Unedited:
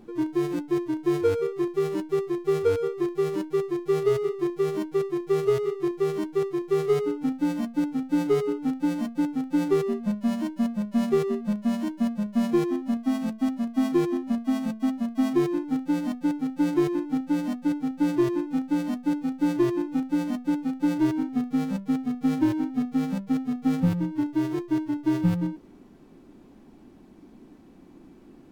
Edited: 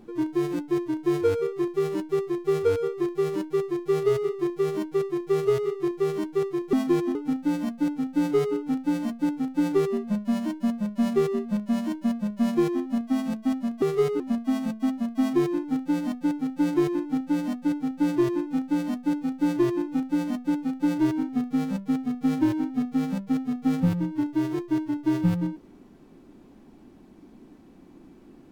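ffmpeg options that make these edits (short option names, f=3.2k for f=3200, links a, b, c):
-filter_complex "[0:a]asplit=5[a][b][c][d][e];[a]atrim=end=6.732[f];[b]atrim=start=13.778:end=14.202[g];[c]atrim=start=7.108:end=13.782[h];[d]atrim=start=6.728:end=7.112[i];[e]atrim=start=14.198[j];[f][g]acrossfade=d=0.004:c1=hsin:c2=hsin[k];[k][h]acrossfade=d=0.004:c1=hsin:c2=hsin[l];[l][i]acrossfade=d=0.004:c1=hsin:c2=hsin[m];[m][j]acrossfade=d=0.004:c1=hsin:c2=hsin"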